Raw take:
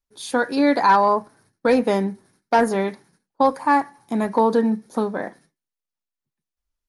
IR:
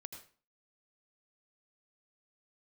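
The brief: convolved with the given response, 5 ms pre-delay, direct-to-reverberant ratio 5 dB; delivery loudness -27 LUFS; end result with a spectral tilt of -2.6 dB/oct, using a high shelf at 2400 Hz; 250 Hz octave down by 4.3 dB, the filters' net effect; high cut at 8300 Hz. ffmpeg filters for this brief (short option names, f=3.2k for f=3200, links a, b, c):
-filter_complex "[0:a]lowpass=8.3k,equalizer=f=250:t=o:g=-5,highshelf=f=2.4k:g=7.5,asplit=2[a][b];[1:a]atrim=start_sample=2205,adelay=5[c];[b][c]afir=irnorm=-1:irlink=0,volume=-0.5dB[d];[a][d]amix=inputs=2:normalize=0,volume=-7.5dB"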